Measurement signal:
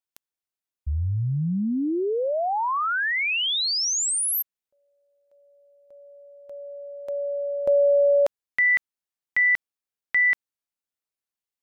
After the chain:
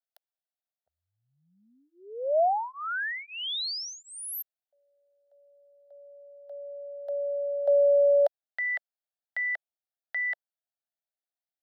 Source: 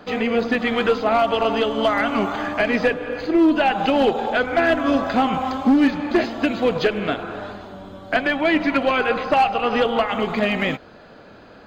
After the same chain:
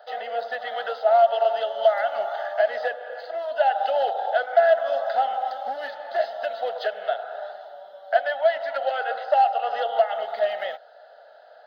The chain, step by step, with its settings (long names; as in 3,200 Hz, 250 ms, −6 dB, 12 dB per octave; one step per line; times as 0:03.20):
four-pole ladder high-pass 580 Hz, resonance 60%
phaser with its sweep stopped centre 1,600 Hz, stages 8
level +3.5 dB